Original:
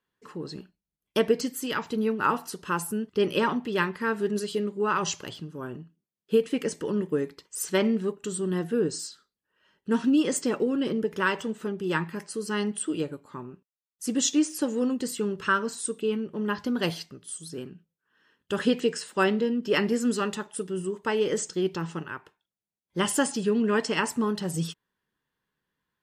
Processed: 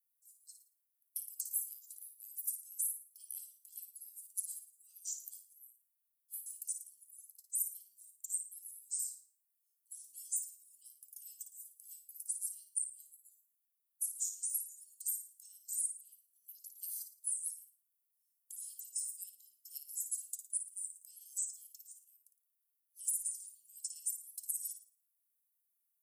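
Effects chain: inverse Chebyshev high-pass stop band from 1900 Hz, stop band 80 dB; tilt +2.5 dB/oct; compressor 6:1, threshold -38 dBFS, peak gain reduction 15 dB; flutter echo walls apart 9.6 m, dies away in 0.4 s; gain +4 dB

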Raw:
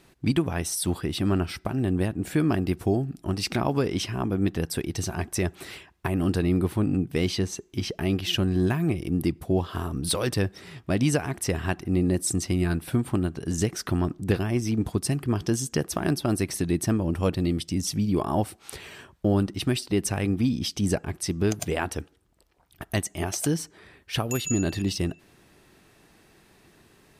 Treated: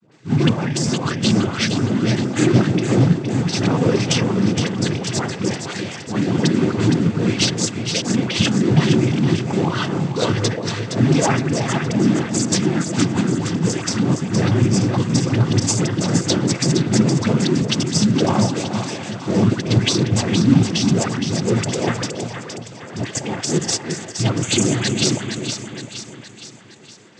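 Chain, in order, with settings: transient shaper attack -7 dB, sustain +12 dB; dispersion highs, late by 0.115 s, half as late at 760 Hz; in parallel at -8.5 dB: decimation with a swept rate 35×, swing 60% 3.8 Hz; on the sum: noise vocoder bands 16; split-band echo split 820 Hz, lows 0.353 s, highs 0.466 s, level -7 dB; gain +5.5 dB

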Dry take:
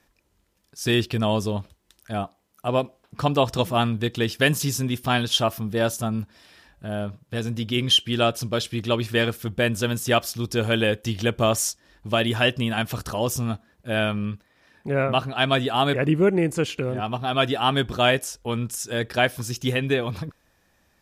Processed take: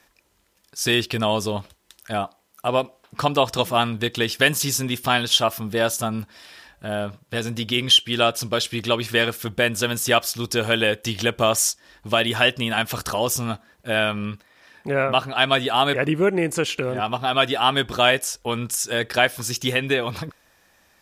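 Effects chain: low shelf 370 Hz -10 dB; in parallel at -0.5 dB: compressor, threshold -30 dBFS, peak gain reduction 15 dB; on the sum: gain +2 dB

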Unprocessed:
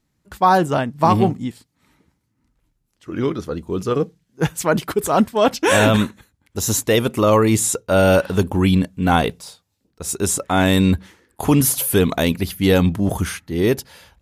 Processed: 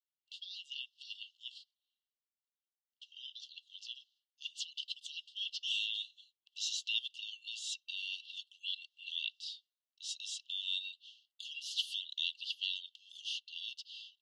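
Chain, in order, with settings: gate with hold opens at -42 dBFS; LPF 4000 Hz 24 dB/oct; compressor 4:1, threshold -23 dBFS, peak gain reduction 11.5 dB; brick-wall FIR high-pass 2700 Hz; gain +3 dB

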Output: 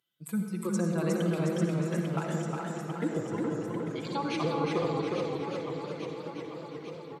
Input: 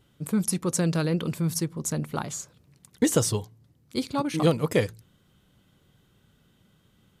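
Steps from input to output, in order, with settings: per-bin expansion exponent 1.5; treble ducked by the level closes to 500 Hz, closed at -21 dBFS; HPF 180 Hz 12 dB/oct; tilt +2.5 dB/oct; comb 6 ms; limiter -24 dBFS, peak gain reduction 10.5 dB; 1.44–4.05 polynomial smoothing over 25 samples; echo with dull and thin repeats by turns 0.423 s, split 1700 Hz, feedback 77%, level -4.5 dB; reverb RT60 1.9 s, pre-delay 52 ms, DRR 2.5 dB; warbling echo 0.359 s, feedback 51%, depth 73 cents, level -3.5 dB; gain +1 dB

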